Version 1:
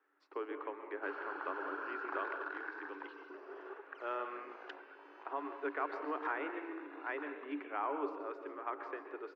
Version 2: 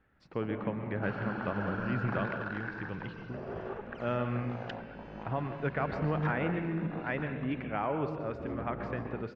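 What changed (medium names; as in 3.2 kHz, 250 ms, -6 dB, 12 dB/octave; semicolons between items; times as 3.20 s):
first sound +6.5 dB; master: remove rippled Chebyshev high-pass 280 Hz, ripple 9 dB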